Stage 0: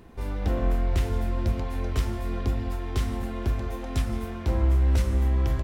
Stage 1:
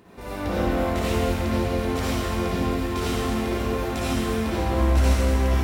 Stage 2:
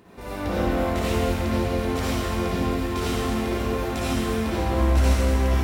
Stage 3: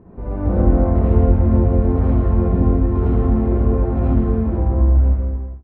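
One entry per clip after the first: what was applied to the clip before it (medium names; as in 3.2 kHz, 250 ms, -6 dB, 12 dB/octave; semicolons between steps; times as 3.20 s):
high-pass 210 Hz 6 dB/octave; reverberation RT60 2.2 s, pre-delay 53 ms, DRR -10 dB
no audible change
fade out at the end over 1.53 s; low-pass 1.2 kHz 12 dB/octave; tilt EQ -3.5 dB/octave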